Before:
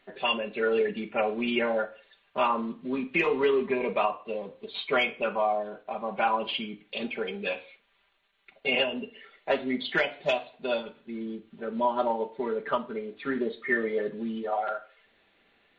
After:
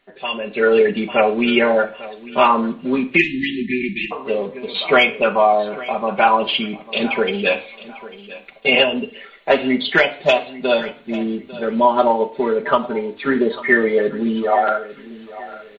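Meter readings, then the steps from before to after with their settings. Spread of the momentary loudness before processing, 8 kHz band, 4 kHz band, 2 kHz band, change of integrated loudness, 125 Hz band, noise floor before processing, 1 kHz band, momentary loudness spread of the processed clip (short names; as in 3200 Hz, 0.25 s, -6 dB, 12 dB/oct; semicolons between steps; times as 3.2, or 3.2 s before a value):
11 LU, n/a, +11.0 dB, +11.5 dB, +11.0 dB, +12.0 dB, -68 dBFS, +11.5 dB, 15 LU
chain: feedback echo 0.847 s, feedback 29%, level -18 dB; AGC gain up to 14 dB; spectral delete 3.17–4.12, 380–1700 Hz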